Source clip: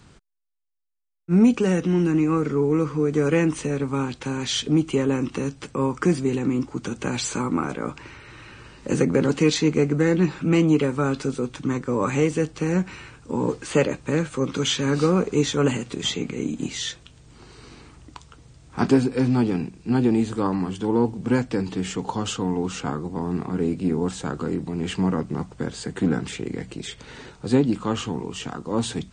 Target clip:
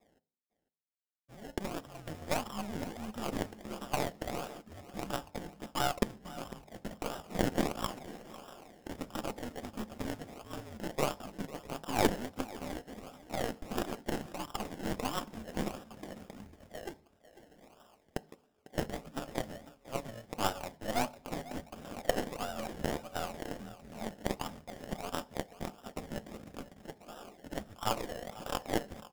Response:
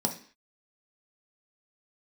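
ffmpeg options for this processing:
-filter_complex "[0:a]equalizer=frequency=470:width=2.7:gain=-12,bandreject=frequency=710:width=12,aecho=1:1:6.3:0.4,asplit=2[link_01][link_02];[link_02]acompressor=threshold=-28dB:ratio=6,volume=2.5dB[link_03];[link_01][link_03]amix=inputs=2:normalize=0,alimiter=limit=-11.5dB:level=0:latency=1:release=190,highpass=frequency=550:width_type=q:width=0.5412,highpass=frequency=550:width_type=q:width=1.307,lowpass=frequency=2200:width_type=q:width=0.5176,lowpass=frequency=2200:width_type=q:width=0.7071,lowpass=frequency=2200:width_type=q:width=1.932,afreqshift=-220,adynamicsmooth=sensitivity=4.5:basefreq=510,acrusher=samples=29:mix=1:aa=0.000001:lfo=1:lforange=17.4:lforate=1.5,aecho=1:1:499:0.188,asplit=2[link_04][link_05];[1:a]atrim=start_sample=2205,asetrate=40131,aresample=44100[link_06];[link_05][link_06]afir=irnorm=-1:irlink=0,volume=-17.5dB[link_07];[link_04][link_07]amix=inputs=2:normalize=0,aeval=exprs='0.355*(cos(1*acos(clip(val(0)/0.355,-1,1)))-cos(1*PI/2))+0.0794*(cos(3*acos(clip(val(0)/0.355,-1,1)))-cos(3*PI/2))+0.0112*(cos(5*acos(clip(val(0)/0.355,-1,1)))-cos(5*PI/2))+0.0282*(cos(6*acos(clip(val(0)/0.355,-1,1)))-cos(6*PI/2))+0.00708*(cos(7*acos(clip(val(0)/0.355,-1,1)))-cos(7*PI/2))':channel_layout=same"

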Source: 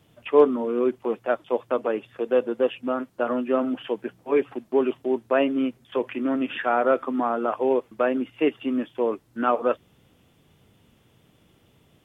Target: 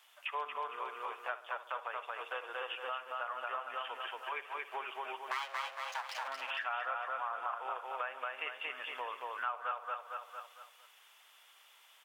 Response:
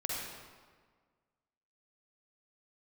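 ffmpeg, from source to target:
-filter_complex "[0:a]asplit=2[link_01][link_02];[link_02]adelay=64,lowpass=frequency=2000:poles=1,volume=-15dB,asplit=2[link_03][link_04];[link_04]adelay=64,lowpass=frequency=2000:poles=1,volume=0.48,asplit=2[link_05][link_06];[link_06]adelay=64,lowpass=frequency=2000:poles=1,volume=0.48,asplit=2[link_07][link_08];[link_08]adelay=64,lowpass=frequency=2000:poles=1,volume=0.48[link_09];[link_03][link_05][link_07][link_09]amix=inputs=4:normalize=0[link_10];[link_01][link_10]amix=inputs=2:normalize=0,asettb=1/sr,asplit=3[link_11][link_12][link_13];[link_11]atrim=end=5.314[link_14];[link_12]atrim=start=5.31:end=6.28,asetpts=PTS-STARTPTS,afade=type=in:duration=0.004:curve=qsin,afade=type=out:start_time=0.966:duration=0.004:curve=qsin,aeval=exprs='abs(val(0))':channel_layout=same[link_15];[link_13]atrim=start=6.276[link_16];[link_14][link_15]acrossfade=duration=0.004:curve1=hsin:curve2=qsin[link_17];[link_17][link_16]acrossfade=duration=0.004:curve1=qsin:curve2=hsin,highpass=frequency=920:width=0.5412,highpass=frequency=920:width=1.3066,asplit=2[link_18][link_19];[link_19]aecho=0:1:228|456|684|912|1140:0.708|0.269|0.102|0.0388|0.0148[link_20];[link_18][link_20]amix=inputs=2:normalize=0,acompressor=threshold=-42dB:ratio=3,volume=3dB"

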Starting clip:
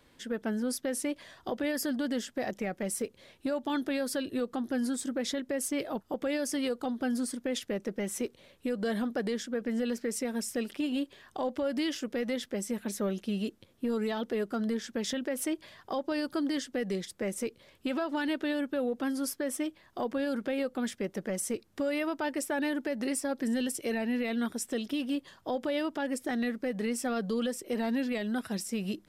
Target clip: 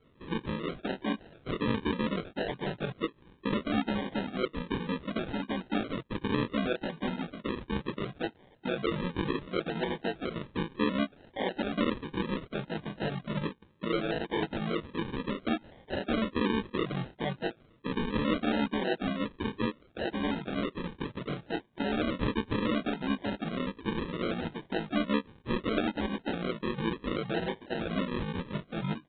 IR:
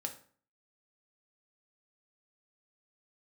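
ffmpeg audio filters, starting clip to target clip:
-filter_complex "[0:a]highpass=73,lowshelf=frequency=98:gain=5,aecho=1:1:6.5:0.54,asplit=4[link_01][link_02][link_03][link_04];[link_02]asetrate=29433,aresample=44100,atempo=1.49831,volume=-9dB[link_05];[link_03]asetrate=33038,aresample=44100,atempo=1.33484,volume=0dB[link_06];[link_04]asetrate=55563,aresample=44100,atempo=0.793701,volume=-15dB[link_07];[link_01][link_05][link_06][link_07]amix=inputs=4:normalize=0,flanger=delay=18:depth=5.9:speed=2.9,aresample=8000,acrusher=samples=9:mix=1:aa=0.000001:lfo=1:lforange=5.4:lforate=0.68,aresample=44100,volume=-1.5dB"

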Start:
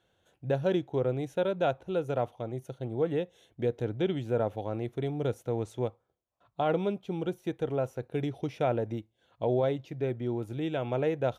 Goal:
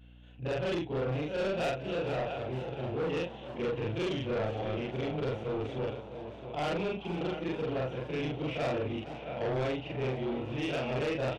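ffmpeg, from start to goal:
ffmpeg -i in.wav -filter_complex "[0:a]afftfilt=real='re':imag='-im':win_size=4096:overlap=0.75,lowpass=frequency=2800:width_type=q:width=4.8,asplit=2[link_01][link_02];[link_02]aecho=0:1:663|1326|1989:0.224|0.0582|0.0151[link_03];[link_01][link_03]amix=inputs=2:normalize=0,asoftclip=type=tanh:threshold=-24dB,aeval=exprs='0.0631*(cos(1*acos(clip(val(0)/0.0631,-1,1)))-cos(1*PI/2))+0.00251*(cos(2*acos(clip(val(0)/0.0631,-1,1)))-cos(2*PI/2))+0.01*(cos(5*acos(clip(val(0)/0.0631,-1,1)))-cos(5*PI/2))':channel_layout=same,aeval=exprs='val(0)+0.00224*(sin(2*PI*60*n/s)+sin(2*PI*2*60*n/s)/2+sin(2*PI*3*60*n/s)/3+sin(2*PI*4*60*n/s)/4+sin(2*PI*5*60*n/s)/5)':channel_layout=same,asplit=2[link_04][link_05];[link_05]asplit=7[link_06][link_07][link_08][link_09][link_10][link_11][link_12];[link_06]adelay=462,afreqshift=97,volume=-15dB[link_13];[link_07]adelay=924,afreqshift=194,volume=-19.2dB[link_14];[link_08]adelay=1386,afreqshift=291,volume=-23.3dB[link_15];[link_09]adelay=1848,afreqshift=388,volume=-27.5dB[link_16];[link_10]adelay=2310,afreqshift=485,volume=-31.6dB[link_17];[link_11]adelay=2772,afreqshift=582,volume=-35.8dB[link_18];[link_12]adelay=3234,afreqshift=679,volume=-39.9dB[link_19];[link_13][link_14][link_15][link_16][link_17][link_18][link_19]amix=inputs=7:normalize=0[link_20];[link_04][link_20]amix=inputs=2:normalize=0" out.wav

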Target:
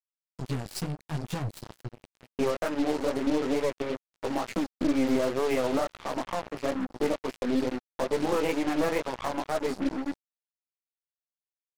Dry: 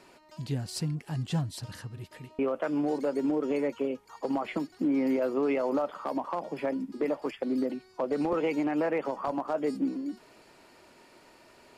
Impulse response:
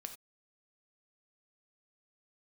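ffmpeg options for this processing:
-af "flanger=delay=15.5:depth=5.1:speed=2.2,aeval=exprs='0.1*(cos(1*acos(clip(val(0)/0.1,-1,1)))-cos(1*PI/2))+0.0158*(cos(4*acos(clip(val(0)/0.1,-1,1)))-cos(4*PI/2))':channel_layout=same,acrusher=bits=5:mix=0:aa=0.5,volume=3.5dB"

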